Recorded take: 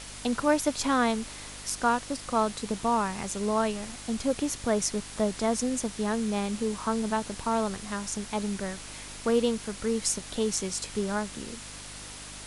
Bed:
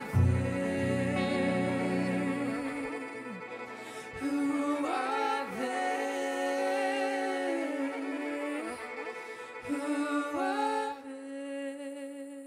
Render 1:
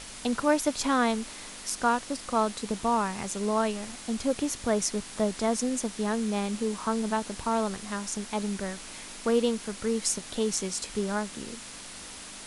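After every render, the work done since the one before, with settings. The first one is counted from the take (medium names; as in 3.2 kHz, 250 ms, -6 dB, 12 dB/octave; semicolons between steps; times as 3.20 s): de-hum 50 Hz, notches 3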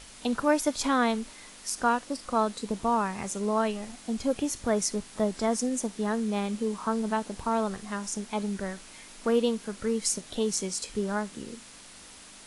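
noise print and reduce 6 dB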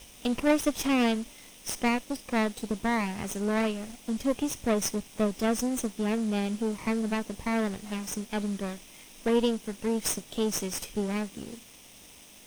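comb filter that takes the minimum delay 0.33 ms; small samples zeroed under -51 dBFS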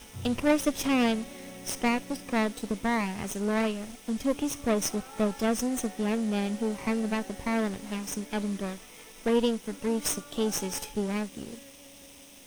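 add bed -15.5 dB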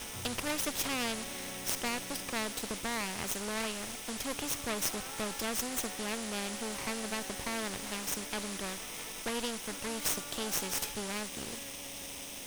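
spectrum-flattening compressor 2:1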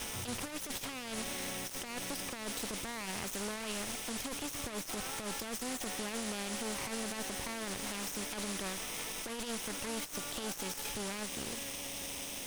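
compressor with a negative ratio -37 dBFS, ratio -0.5; peak limiter -28 dBFS, peak gain reduction 9.5 dB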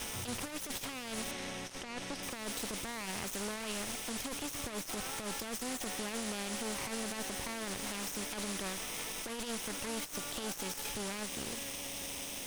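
1.31–2.23 s: distance through air 62 m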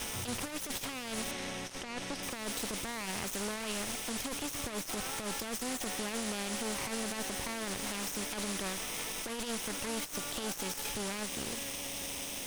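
trim +2 dB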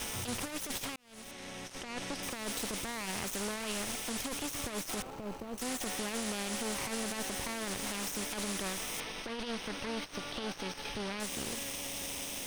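0.96–1.96 s: fade in; 5.02–5.58 s: median filter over 25 samples; 9.00–11.20 s: Savitzky-Golay filter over 15 samples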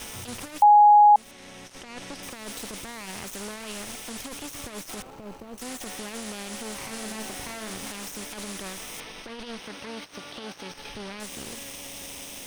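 0.62–1.16 s: bleep 832 Hz -10.5 dBFS; 6.83–7.92 s: flutter echo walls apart 6.3 m, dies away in 0.35 s; 9.59–10.71 s: high-pass 110 Hz 6 dB/octave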